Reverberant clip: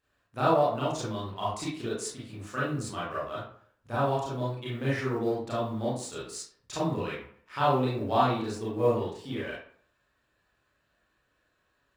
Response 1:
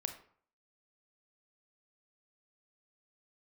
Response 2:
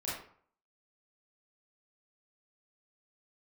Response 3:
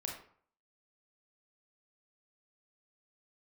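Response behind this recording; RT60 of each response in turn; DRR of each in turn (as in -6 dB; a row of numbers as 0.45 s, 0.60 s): 2; 0.55 s, 0.55 s, 0.55 s; 6.5 dB, -8.5 dB, -0.5 dB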